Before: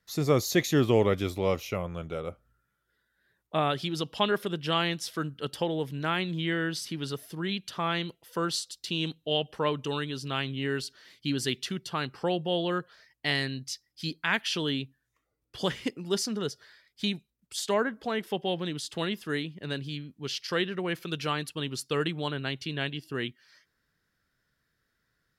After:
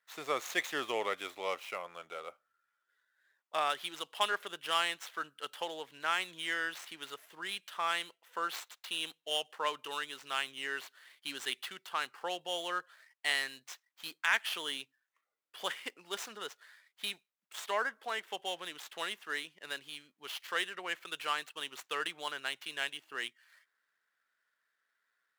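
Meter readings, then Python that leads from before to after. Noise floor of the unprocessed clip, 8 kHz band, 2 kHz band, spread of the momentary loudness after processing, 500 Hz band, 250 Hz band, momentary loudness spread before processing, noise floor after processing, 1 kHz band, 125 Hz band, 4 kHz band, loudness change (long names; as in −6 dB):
−78 dBFS, −6.5 dB, −1.5 dB, 12 LU, −11.5 dB, −20.5 dB, 8 LU, −84 dBFS, −2.5 dB, −31.5 dB, −4.5 dB, −6.0 dB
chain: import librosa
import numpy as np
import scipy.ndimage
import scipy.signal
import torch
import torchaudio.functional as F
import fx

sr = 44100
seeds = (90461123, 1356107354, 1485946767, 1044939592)

y = scipy.signal.medfilt(x, 9)
y = scipy.signal.sosfilt(scipy.signal.butter(2, 930.0, 'highpass', fs=sr, output='sos'), y)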